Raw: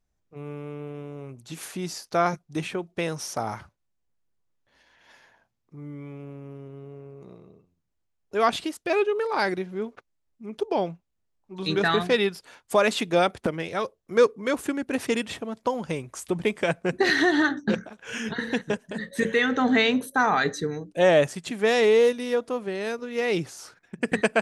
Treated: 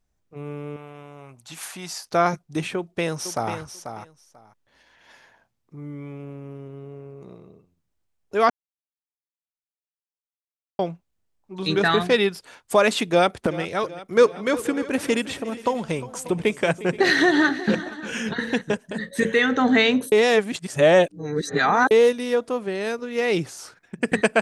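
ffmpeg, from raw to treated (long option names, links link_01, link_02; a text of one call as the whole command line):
ffmpeg -i in.wav -filter_complex "[0:a]asettb=1/sr,asplit=3[link_01][link_02][link_03];[link_01]atrim=end=0.764[link_04];[link_02]atrim=start=0.76:end=2.06,asetpts=PTS-STARTPTS,afade=type=in:duration=0.004:curve=qsin,afade=type=out:start_time=1.296:duration=0.004:curve=qsin,lowshelf=frequency=570:width_type=q:width=1.5:gain=-8.5[link_05];[link_03]atrim=start=2.056[link_06];[link_04][link_05]acrossfade=duration=0.004:curve1=hsin:curve2=qsin[link_07];[link_07][link_06]acrossfade=duration=0.004:curve1=qsin:curve2=hsin,asplit=2[link_08][link_09];[link_09]afade=type=in:start_time=2.76:duration=0.01,afade=type=out:start_time=3.55:duration=0.01,aecho=0:1:490|980:0.354813|0.053222[link_10];[link_08][link_10]amix=inputs=2:normalize=0,asplit=2[link_11][link_12];[link_12]afade=type=in:start_time=13.09:duration=0.01,afade=type=out:start_time=13.61:duration=0.01,aecho=0:1:380|760|1140|1520|1900|2280|2660:0.149624|0.0972553|0.063216|0.0410904|0.0267087|0.0173607|0.0112844[link_13];[link_11][link_13]amix=inputs=2:normalize=0,asplit=3[link_14][link_15][link_16];[link_14]afade=type=out:start_time=14.16:duration=0.02[link_17];[link_15]aecho=1:1:355|477|588:0.141|0.1|0.112,afade=type=in:start_time=14.16:duration=0.02,afade=type=out:start_time=18.5:duration=0.02[link_18];[link_16]afade=type=in:start_time=18.5:duration=0.02[link_19];[link_17][link_18][link_19]amix=inputs=3:normalize=0,asplit=5[link_20][link_21][link_22][link_23][link_24];[link_20]atrim=end=8.5,asetpts=PTS-STARTPTS,afade=type=out:start_time=8.496:duration=0.004:curve=hsin[link_25];[link_21]atrim=start=8.5:end=10.79,asetpts=PTS-STARTPTS,volume=0[link_26];[link_22]atrim=start=10.79:end=20.122,asetpts=PTS-STARTPTS,afade=type=in:duration=0.004:curve=hsin[link_27];[link_23]atrim=start=20.118:end=21.912,asetpts=PTS-STARTPTS,areverse[link_28];[link_24]atrim=start=21.908[link_29];[link_25][link_26][link_27]concat=n=3:v=0:a=1[link_30];[link_30][link_28]acrossfade=duration=0.004:curve1=hsin:curve2=hsin[link_31];[link_31][link_29]acrossfade=duration=0.004:curve1=hsin:curve2=hsin,equalizer=frequency=8400:width=7.7:gain=2.5,volume=3dB" out.wav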